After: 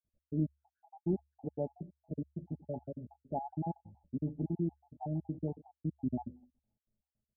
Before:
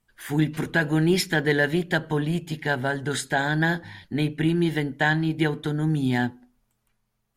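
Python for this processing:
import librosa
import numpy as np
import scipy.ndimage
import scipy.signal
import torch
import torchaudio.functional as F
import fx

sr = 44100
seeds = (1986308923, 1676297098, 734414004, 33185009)

y = fx.spec_dropout(x, sr, seeds[0], share_pct=59)
y = scipy.signal.sosfilt(scipy.signal.cheby1(6, 6, 870.0, 'lowpass', fs=sr, output='sos'), y)
y = fx.peak_eq(y, sr, hz=72.0, db=15.0, octaves=0.26)
y = y * 10.0 ** (-7.5 / 20.0)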